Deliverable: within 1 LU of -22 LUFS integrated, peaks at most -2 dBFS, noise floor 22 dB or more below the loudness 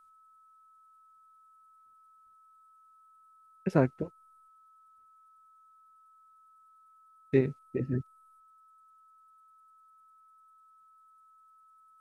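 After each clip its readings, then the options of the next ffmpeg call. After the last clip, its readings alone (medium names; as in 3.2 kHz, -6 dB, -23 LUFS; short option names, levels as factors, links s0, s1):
steady tone 1.3 kHz; tone level -58 dBFS; loudness -31.0 LUFS; peak level -11.0 dBFS; loudness target -22.0 LUFS
-> -af "bandreject=f=1300:w=30"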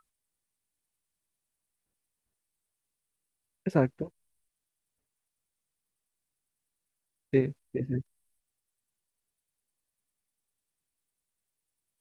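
steady tone not found; loudness -30.5 LUFS; peak level -11.0 dBFS; loudness target -22.0 LUFS
-> -af "volume=2.66"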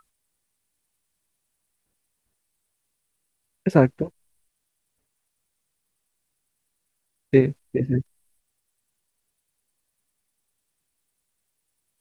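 loudness -22.5 LUFS; peak level -2.5 dBFS; noise floor -78 dBFS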